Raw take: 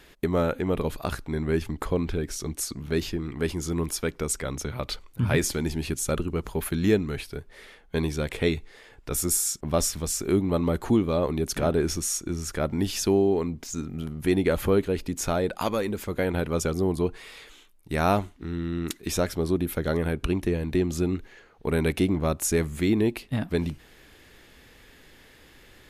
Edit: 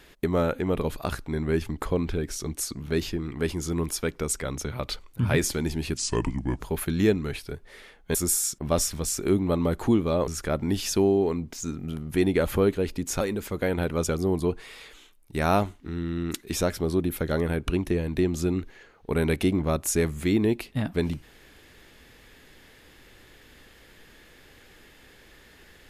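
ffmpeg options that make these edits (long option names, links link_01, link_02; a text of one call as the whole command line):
ffmpeg -i in.wav -filter_complex "[0:a]asplit=6[link_01][link_02][link_03][link_04][link_05][link_06];[link_01]atrim=end=5.974[link_07];[link_02]atrim=start=5.97:end=6.44,asetpts=PTS-STARTPTS,asetrate=33075,aresample=44100[link_08];[link_03]atrim=start=6.436:end=7.992[link_09];[link_04]atrim=start=9.168:end=11.302[link_10];[link_05]atrim=start=12.378:end=15.312[link_11];[link_06]atrim=start=15.768[link_12];[link_07][link_08]acrossfade=duration=0.004:curve1=hsin:curve2=hsin[link_13];[link_13][link_09]acrossfade=duration=0.004:curve1=hsin:curve2=hsin[link_14];[link_14][link_10]acrossfade=duration=0.004:curve1=hsin:curve2=hsin[link_15];[link_15][link_11]acrossfade=duration=0.004:curve1=hsin:curve2=hsin[link_16];[link_16][link_12]acrossfade=duration=0.004:curve1=hsin:curve2=hsin" out.wav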